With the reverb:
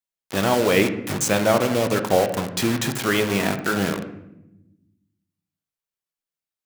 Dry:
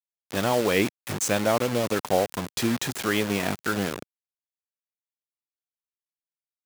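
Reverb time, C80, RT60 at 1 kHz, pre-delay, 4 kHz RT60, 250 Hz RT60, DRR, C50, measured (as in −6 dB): 0.85 s, 13.0 dB, 0.70 s, 5 ms, 0.60 s, 1.6 s, 6.5 dB, 10.0 dB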